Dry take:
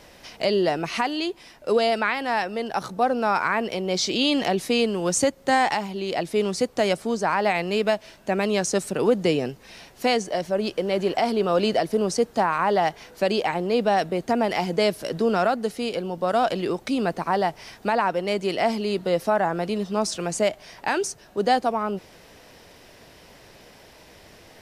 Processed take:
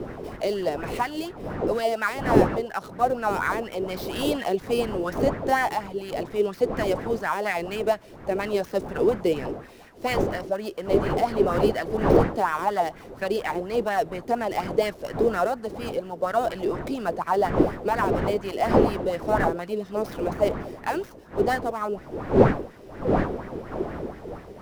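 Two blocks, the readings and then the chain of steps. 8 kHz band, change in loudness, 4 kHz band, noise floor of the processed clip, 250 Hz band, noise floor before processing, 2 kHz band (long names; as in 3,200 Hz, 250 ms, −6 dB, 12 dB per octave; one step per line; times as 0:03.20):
−11.5 dB, −1.5 dB, −9.0 dB, −45 dBFS, −1.0 dB, −50 dBFS, −2.5 dB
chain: gap after every zero crossing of 0.077 ms
wind on the microphone 400 Hz −24 dBFS
auto-filter bell 4.2 Hz 370–1,900 Hz +13 dB
level −8.5 dB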